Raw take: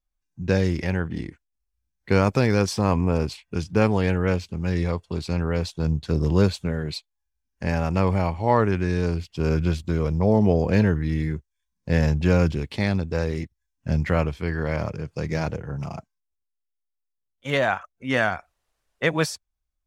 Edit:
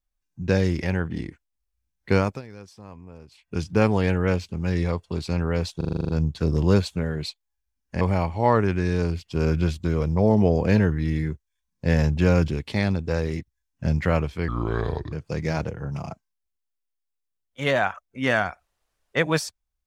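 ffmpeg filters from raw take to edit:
ffmpeg -i in.wav -filter_complex "[0:a]asplit=14[link_01][link_02][link_03][link_04][link_05][link_06][link_07][link_08][link_09][link_10][link_11][link_12][link_13][link_14];[link_01]atrim=end=2.42,asetpts=PTS-STARTPTS,afade=type=out:start_time=2.14:duration=0.28:silence=0.0794328[link_15];[link_02]atrim=start=2.42:end=3.31,asetpts=PTS-STARTPTS,volume=-22dB[link_16];[link_03]atrim=start=3.31:end=5.812,asetpts=PTS-STARTPTS,afade=type=in:duration=0.28:silence=0.0794328[link_17];[link_04]atrim=start=5.768:end=5.812[link_18];[link_05]atrim=start=5.768:end=5.812[link_19];[link_06]atrim=start=5.768:end=5.812[link_20];[link_07]atrim=start=5.768:end=5.812[link_21];[link_08]atrim=start=5.768:end=5.812[link_22];[link_09]atrim=start=5.768:end=5.812[link_23];[link_10]atrim=start=5.768:end=5.812[link_24];[link_11]atrim=start=5.768:end=7.692[link_25];[link_12]atrim=start=8.048:end=14.524[link_26];[link_13]atrim=start=14.52:end=14.99,asetpts=PTS-STARTPTS,asetrate=32193,aresample=44100,atrim=end_sample=28393,asetpts=PTS-STARTPTS[link_27];[link_14]atrim=start=14.986[link_28];[link_15][link_16][link_17]concat=n=3:v=0:a=1[link_29];[link_29][link_18]acrossfade=duration=0.004:curve1=hsin:curve2=hsin[link_30];[link_30][link_19]acrossfade=duration=0.004:curve1=hsin:curve2=hsin[link_31];[link_31][link_20]acrossfade=duration=0.004:curve1=hsin:curve2=hsin[link_32];[link_32][link_21]acrossfade=duration=0.004:curve1=hsin:curve2=hsin[link_33];[link_33][link_22]acrossfade=duration=0.004:curve1=hsin:curve2=hsin[link_34];[link_34][link_23]acrossfade=duration=0.004:curve1=hsin:curve2=hsin[link_35];[link_35][link_24]acrossfade=duration=0.004:curve1=hsin:curve2=hsin[link_36];[link_36][link_25]acrossfade=duration=0.004:curve1=hsin:curve2=hsin[link_37];[link_37][link_26]acrossfade=duration=0.004:curve1=hsin:curve2=hsin[link_38];[link_38][link_27]acrossfade=duration=0.004:curve1=hsin:curve2=hsin[link_39];[link_39][link_28]acrossfade=duration=0.004:curve1=hsin:curve2=hsin" out.wav

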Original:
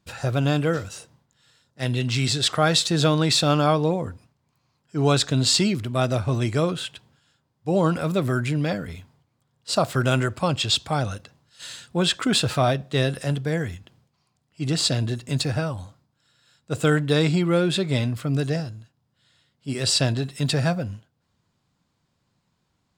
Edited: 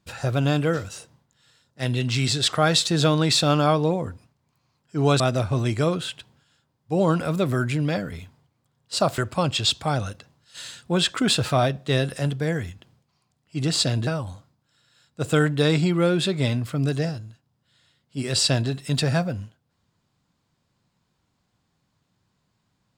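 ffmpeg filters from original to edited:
ffmpeg -i in.wav -filter_complex "[0:a]asplit=4[link_01][link_02][link_03][link_04];[link_01]atrim=end=5.202[link_05];[link_02]atrim=start=5.958:end=9.942[link_06];[link_03]atrim=start=10.228:end=15.122[link_07];[link_04]atrim=start=15.578[link_08];[link_05][link_06]acrossfade=duration=0.004:curve1=hsin:curve2=hsin[link_09];[link_09][link_07]acrossfade=duration=0.004:curve1=hsin:curve2=hsin[link_10];[link_10][link_08]acrossfade=duration=0.004:curve1=hsin:curve2=hsin" out.wav

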